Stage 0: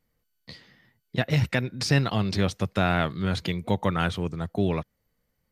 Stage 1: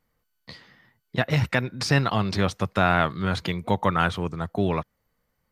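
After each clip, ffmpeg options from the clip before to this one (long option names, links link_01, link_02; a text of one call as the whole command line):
ffmpeg -i in.wav -af "equalizer=frequency=1100:width=1:gain=7" out.wav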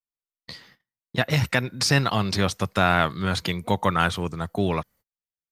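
ffmpeg -i in.wav -af "highshelf=frequency=4500:gain=10.5,agate=range=-35dB:threshold=-51dB:ratio=16:detection=peak" out.wav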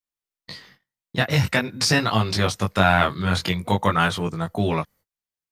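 ffmpeg -i in.wav -af "flanger=delay=18:depth=4.4:speed=0.46,volume=5dB" out.wav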